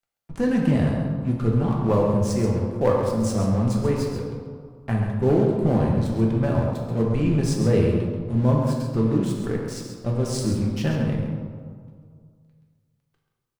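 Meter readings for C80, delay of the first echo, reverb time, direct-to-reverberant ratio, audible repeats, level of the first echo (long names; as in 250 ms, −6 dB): 3.0 dB, 134 ms, 2.1 s, −2.0 dB, 1, −8.5 dB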